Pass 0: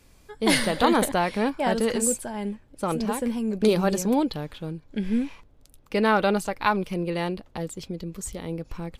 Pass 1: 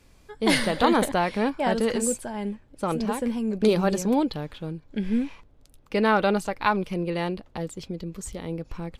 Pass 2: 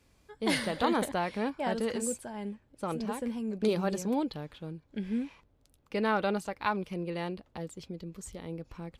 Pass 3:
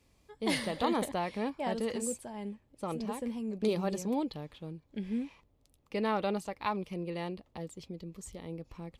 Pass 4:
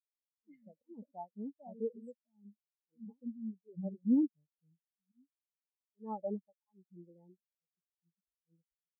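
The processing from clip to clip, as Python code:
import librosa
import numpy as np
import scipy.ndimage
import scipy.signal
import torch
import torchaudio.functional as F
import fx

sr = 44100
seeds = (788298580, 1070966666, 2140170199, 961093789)

y1 = fx.high_shelf(x, sr, hz=8900.0, db=-7.5)
y2 = scipy.signal.sosfilt(scipy.signal.butter(2, 41.0, 'highpass', fs=sr, output='sos'), y1)
y2 = y2 * 10.0 ** (-7.5 / 20.0)
y3 = fx.peak_eq(y2, sr, hz=1500.0, db=-9.5, octaves=0.23)
y3 = y3 * 10.0 ** (-2.0 / 20.0)
y4 = fx.auto_swell(y3, sr, attack_ms=206.0)
y4 = fx.spectral_expand(y4, sr, expansion=4.0)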